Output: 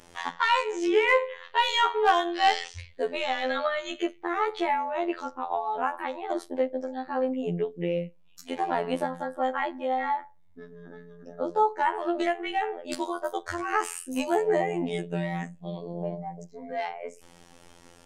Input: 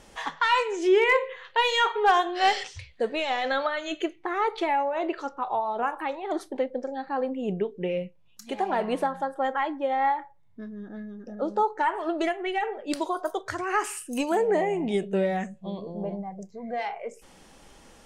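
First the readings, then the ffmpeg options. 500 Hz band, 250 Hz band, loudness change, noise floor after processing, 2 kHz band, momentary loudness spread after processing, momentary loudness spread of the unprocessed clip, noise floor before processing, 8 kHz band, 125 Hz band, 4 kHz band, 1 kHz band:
-1.5 dB, -1.0 dB, -1.0 dB, -55 dBFS, -1.0 dB, 13 LU, 14 LU, -55 dBFS, -1.0 dB, +2.0 dB, -0.5 dB, -1.0 dB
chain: -af "afftfilt=real='hypot(re,im)*cos(PI*b)':imag='0':win_size=2048:overlap=0.75,volume=2.5dB"

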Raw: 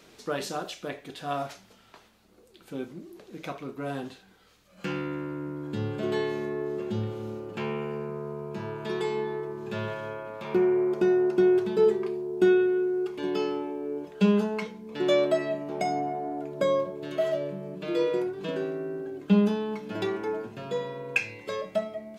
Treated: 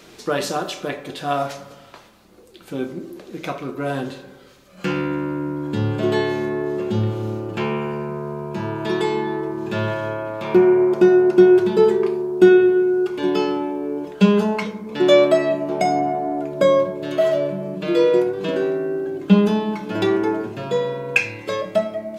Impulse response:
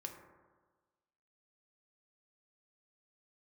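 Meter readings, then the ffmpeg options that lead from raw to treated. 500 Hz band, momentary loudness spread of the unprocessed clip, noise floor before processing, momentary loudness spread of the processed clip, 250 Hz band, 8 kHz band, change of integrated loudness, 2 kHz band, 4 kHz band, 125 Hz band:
+9.0 dB, 14 LU, -58 dBFS, 15 LU, +9.0 dB, n/a, +9.0 dB, +9.0 dB, +9.0 dB, +9.5 dB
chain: -filter_complex "[0:a]asplit=2[a][b];[1:a]atrim=start_sample=2205[c];[b][c]afir=irnorm=-1:irlink=0,volume=2dB[d];[a][d]amix=inputs=2:normalize=0,volume=4dB"

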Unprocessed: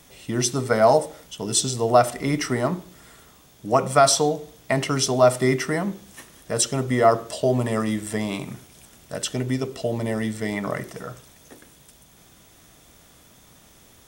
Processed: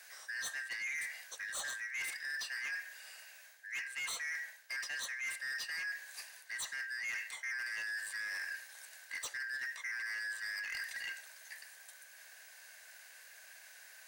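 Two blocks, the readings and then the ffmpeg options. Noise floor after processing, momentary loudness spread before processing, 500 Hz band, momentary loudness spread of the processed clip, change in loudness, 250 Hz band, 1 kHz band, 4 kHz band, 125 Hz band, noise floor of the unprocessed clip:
-57 dBFS, 16 LU, under -40 dB, 16 LU, -17.0 dB, under -40 dB, -31.0 dB, -14.5 dB, under -40 dB, -53 dBFS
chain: -af "afftfilt=real='real(if(lt(b,272),68*(eq(floor(b/68),0)*2+eq(floor(b/68),1)*0+eq(floor(b/68),2)*3+eq(floor(b/68),3)*1)+mod(b,68),b),0)':imag='imag(if(lt(b,272),68*(eq(floor(b/68),0)*2+eq(floor(b/68),1)*0+eq(floor(b/68),2)*3+eq(floor(b/68),3)*1)+mod(b,68),b),0)':win_size=2048:overlap=0.75,highpass=f=650:w=0.5412,highpass=f=650:w=1.3066,areverse,acompressor=threshold=-29dB:ratio=8,areverse,asoftclip=type=tanh:threshold=-32.5dB,volume=-3.5dB"

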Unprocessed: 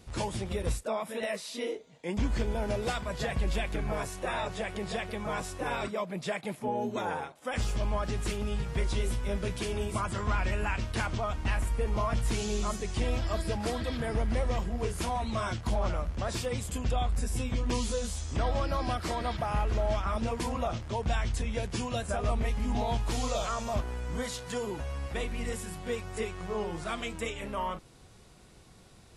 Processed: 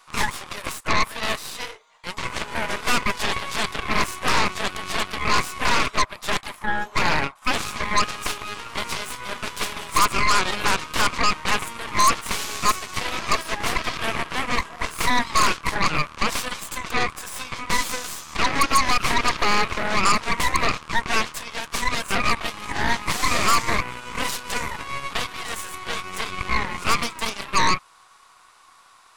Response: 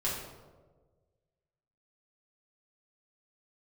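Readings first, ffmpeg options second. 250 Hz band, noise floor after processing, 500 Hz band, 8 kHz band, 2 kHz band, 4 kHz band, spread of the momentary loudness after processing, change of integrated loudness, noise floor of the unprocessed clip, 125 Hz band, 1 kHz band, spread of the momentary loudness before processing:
+3.0 dB, -52 dBFS, +1.5 dB, +13.0 dB, +15.5 dB, +15.0 dB, 10 LU, +9.0 dB, -55 dBFS, -2.0 dB, +12.5 dB, 5 LU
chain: -af "highpass=f=1.1k:t=q:w=4.9,aeval=exprs='0.168*(cos(1*acos(clip(val(0)/0.168,-1,1)))-cos(1*PI/2))+0.0668*(cos(8*acos(clip(val(0)/0.168,-1,1)))-cos(8*PI/2))':c=same,volume=4dB"

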